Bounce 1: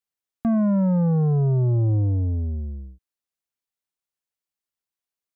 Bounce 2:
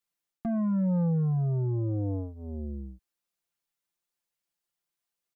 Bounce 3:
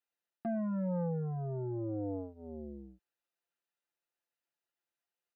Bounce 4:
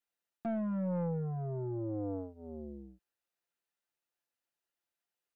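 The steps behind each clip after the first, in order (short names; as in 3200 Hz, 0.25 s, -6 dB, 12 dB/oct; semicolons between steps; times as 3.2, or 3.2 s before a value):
comb 5.8 ms, depth 91%; reverse; compressor 12:1, threshold -25 dBFS, peak gain reduction 11.5 dB; reverse
tone controls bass -10 dB, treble -12 dB; notch comb 1100 Hz
tracing distortion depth 0.073 ms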